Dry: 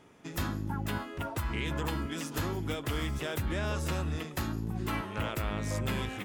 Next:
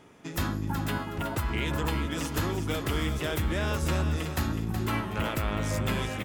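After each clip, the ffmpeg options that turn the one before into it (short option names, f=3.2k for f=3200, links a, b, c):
-af "aecho=1:1:371|742|1113:0.376|0.094|0.0235,volume=3.5dB"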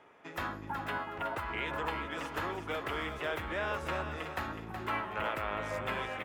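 -filter_complex "[0:a]acrossover=split=450 2800:gain=0.158 1 0.141[a][b][c];[a][b][c]amix=inputs=3:normalize=0"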